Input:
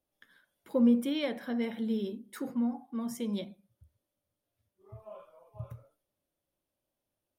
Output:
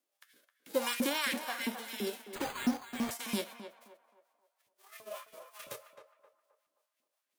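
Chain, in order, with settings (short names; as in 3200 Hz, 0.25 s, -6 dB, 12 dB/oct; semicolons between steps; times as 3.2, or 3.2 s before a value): spectral whitening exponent 0.3; in parallel at -3 dB: negative-ratio compressor -35 dBFS, ratio -1; on the sum: rotary speaker horn 0.65 Hz, later 5.5 Hz, at 2.54; LFO high-pass saw up 3 Hz 230–2400 Hz; on a send: narrowing echo 0.263 s, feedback 43%, band-pass 850 Hz, level -7.5 dB; 2.35–3.11 on the sum: careless resampling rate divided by 8×, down none, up hold; gain -3.5 dB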